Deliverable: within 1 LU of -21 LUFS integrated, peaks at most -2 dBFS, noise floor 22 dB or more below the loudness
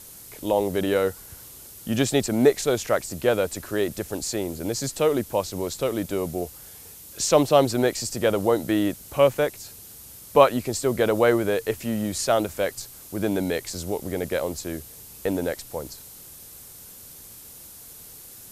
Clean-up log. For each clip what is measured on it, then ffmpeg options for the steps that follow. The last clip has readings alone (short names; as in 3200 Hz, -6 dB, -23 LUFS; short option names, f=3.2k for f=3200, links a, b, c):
noise floor -45 dBFS; noise floor target -46 dBFS; loudness -24.0 LUFS; peak -2.0 dBFS; loudness target -21.0 LUFS
-> -af "afftdn=nr=6:nf=-45"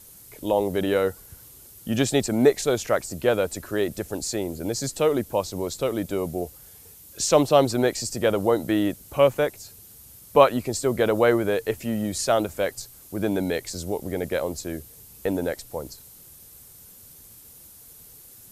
noise floor -48 dBFS; loudness -24.0 LUFS; peak -2.0 dBFS; loudness target -21.0 LUFS
-> -af "volume=3dB,alimiter=limit=-2dB:level=0:latency=1"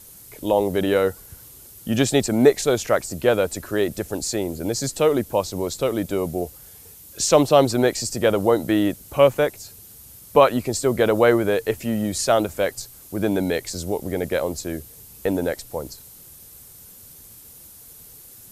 loudness -21.5 LUFS; peak -2.0 dBFS; noise floor -45 dBFS